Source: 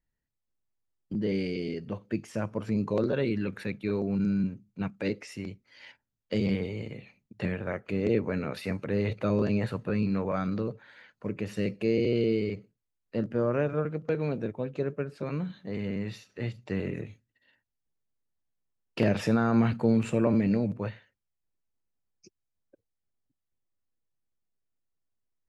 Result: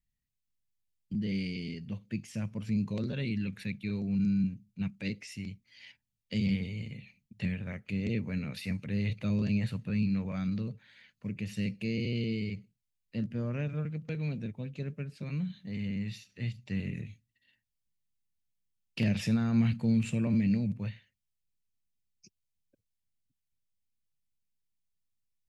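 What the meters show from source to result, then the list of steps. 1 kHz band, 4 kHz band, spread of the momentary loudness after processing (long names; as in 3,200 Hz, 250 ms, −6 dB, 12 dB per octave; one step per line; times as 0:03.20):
−14.0 dB, 0.0 dB, 12 LU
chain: flat-topped bell 690 Hz −14 dB 2.7 octaves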